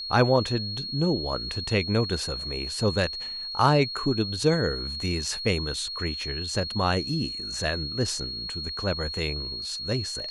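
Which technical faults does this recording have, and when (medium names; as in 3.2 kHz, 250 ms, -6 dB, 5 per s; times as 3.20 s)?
whine 4.3 kHz -32 dBFS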